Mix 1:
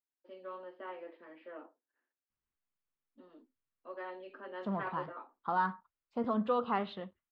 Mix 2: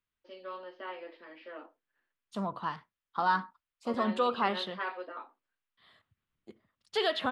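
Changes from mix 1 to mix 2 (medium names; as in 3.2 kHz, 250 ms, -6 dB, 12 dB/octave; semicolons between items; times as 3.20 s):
second voice: entry -2.30 s; master: remove tape spacing loss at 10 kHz 35 dB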